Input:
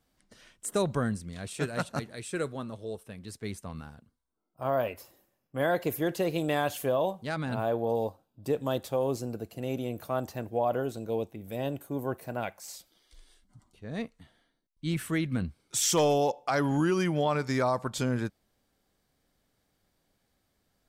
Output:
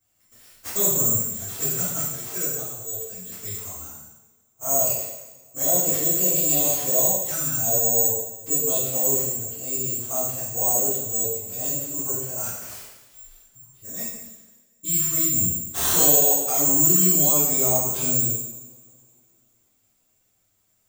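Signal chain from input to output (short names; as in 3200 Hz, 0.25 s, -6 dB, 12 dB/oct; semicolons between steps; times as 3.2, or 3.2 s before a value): envelope flanger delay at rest 9.6 ms, full sweep at -26 dBFS; careless resampling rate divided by 6×, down none, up zero stuff; two-slope reverb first 0.94 s, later 2.8 s, from -23 dB, DRR -9.5 dB; gain -8.5 dB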